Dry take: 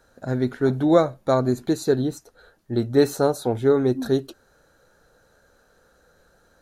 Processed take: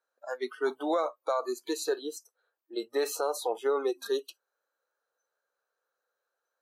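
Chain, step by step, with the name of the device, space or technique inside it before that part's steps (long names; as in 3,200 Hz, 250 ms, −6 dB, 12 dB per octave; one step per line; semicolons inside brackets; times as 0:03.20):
noise reduction from a noise print of the clip's start 24 dB
laptop speaker (high-pass filter 430 Hz 24 dB per octave; parametric band 1,100 Hz +7 dB 0.45 octaves; parametric band 2,500 Hz +4 dB 0.58 octaves; brickwall limiter −18 dBFS, peak gain reduction 13 dB)
level −1.5 dB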